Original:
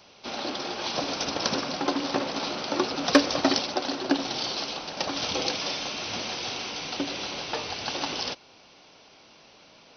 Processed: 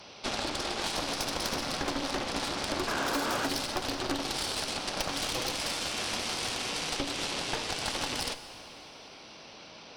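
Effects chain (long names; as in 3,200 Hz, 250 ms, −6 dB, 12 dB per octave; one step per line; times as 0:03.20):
in parallel at −6 dB: sine wavefolder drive 8 dB, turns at −6.5 dBFS
on the sum: sound drawn into the spectrogram noise, 0:02.87–0:03.47, 210–1,700 Hz −15 dBFS
harmonic generator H 6 −10 dB, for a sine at −5.5 dBFS
downward compressor 6 to 1, threshold −24 dBFS, peak gain reduction 15.5 dB
dense smooth reverb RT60 2.6 s, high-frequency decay 0.95×, DRR 11 dB
level −5 dB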